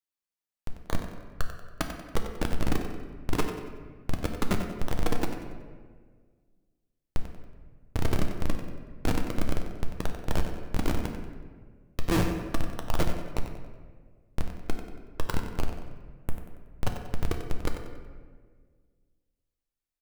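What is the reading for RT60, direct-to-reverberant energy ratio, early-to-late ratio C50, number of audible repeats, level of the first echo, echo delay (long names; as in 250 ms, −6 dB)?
1.6 s, 2.5 dB, 4.5 dB, 2, −9.5 dB, 93 ms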